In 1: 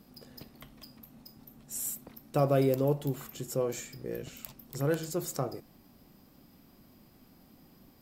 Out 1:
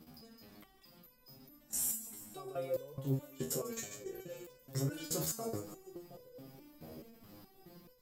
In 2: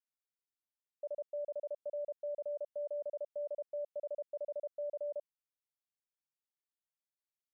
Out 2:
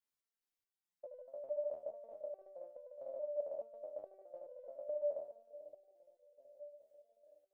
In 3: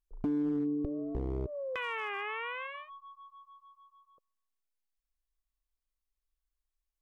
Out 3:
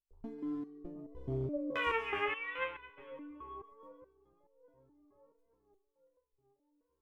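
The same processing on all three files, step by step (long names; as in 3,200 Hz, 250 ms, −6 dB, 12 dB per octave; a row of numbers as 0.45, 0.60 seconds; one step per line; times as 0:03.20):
output level in coarse steps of 20 dB
echo with a time of its own for lows and highs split 740 Hz, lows 718 ms, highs 142 ms, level −11 dB
step-sequenced resonator 4.7 Hz 79–500 Hz
level +14.5 dB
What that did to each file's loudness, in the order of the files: −7.0, −3.5, −3.0 LU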